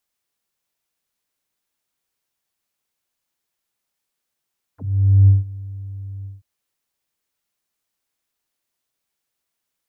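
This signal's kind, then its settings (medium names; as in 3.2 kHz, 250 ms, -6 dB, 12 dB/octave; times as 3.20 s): synth note square G2 12 dB/octave, low-pass 130 Hz, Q 11, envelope 4 oct, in 0.05 s, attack 498 ms, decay 0.16 s, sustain -22 dB, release 0.17 s, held 1.47 s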